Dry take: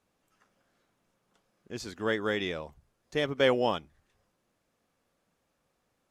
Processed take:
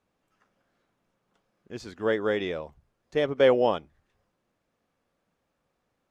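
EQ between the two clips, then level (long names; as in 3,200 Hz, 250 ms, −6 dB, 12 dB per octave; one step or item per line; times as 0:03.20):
dynamic equaliser 520 Hz, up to +6 dB, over −39 dBFS, Q 1
high-shelf EQ 5,600 Hz −10 dB
0.0 dB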